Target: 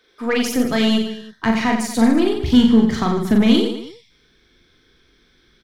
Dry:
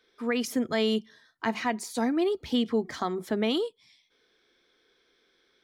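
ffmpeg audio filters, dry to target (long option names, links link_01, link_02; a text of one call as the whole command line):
ffmpeg -i in.wav -af "asubboost=boost=11:cutoff=160,aeval=exprs='0.251*(cos(1*acos(clip(val(0)/0.251,-1,1)))-cos(1*PI/2))+0.00891*(cos(8*acos(clip(val(0)/0.251,-1,1)))-cos(8*PI/2))':channel_layout=same,aecho=1:1:40|90|152.5|230.6|328.3:0.631|0.398|0.251|0.158|0.1,volume=7.5dB" out.wav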